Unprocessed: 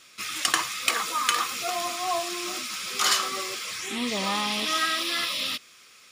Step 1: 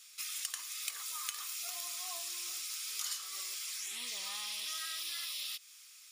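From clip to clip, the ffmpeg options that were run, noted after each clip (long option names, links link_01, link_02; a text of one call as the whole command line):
ffmpeg -i in.wav -af "aderivative,acompressor=threshold=-38dB:ratio=4" out.wav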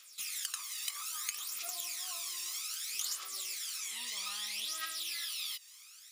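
ffmpeg -i in.wav -af "aphaser=in_gain=1:out_gain=1:delay=1.1:decay=0.62:speed=0.62:type=triangular,volume=-1dB" out.wav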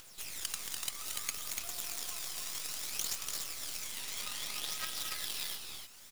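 ffmpeg -i in.wav -filter_complex "[0:a]asplit=2[link_01][link_02];[link_02]aecho=0:1:227.4|291.5:0.447|0.631[link_03];[link_01][link_03]amix=inputs=2:normalize=0,acompressor=mode=upward:threshold=-46dB:ratio=2.5,acrusher=bits=6:dc=4:mix=0:aa=0.000001" out.wav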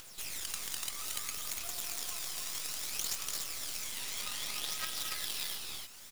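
ffmpeg -i in.wav -af "alimiter=level_in=2dB:limit=-24dB:level=0:latency=1:release=22,volume=-2dB,volume=3dB" out.wav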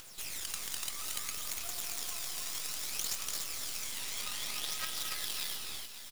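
ffmpeg -i in.wav -af "aecho=1:1:548:0.237" out.wav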